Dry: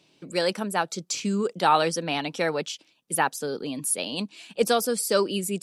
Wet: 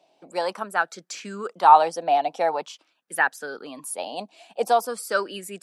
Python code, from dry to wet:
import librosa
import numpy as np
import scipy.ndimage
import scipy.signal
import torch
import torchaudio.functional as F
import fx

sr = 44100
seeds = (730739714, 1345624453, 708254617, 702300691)

y = scipy.signal.sosfilt(scipy.signal.butter(2, 230.0, 'highpass', fs=sr, output='sos'), x)
y = fx.peak_eq(y, sr, hz=710.0, db=6.5, octaves=0.69)
y = fx.bell_lfo(y, sr, hz=0.46, low_hz=690.0, high_hz=1700.0, db=16)
y = F.gain(torch.from_numpy(y), -7.5).numpy()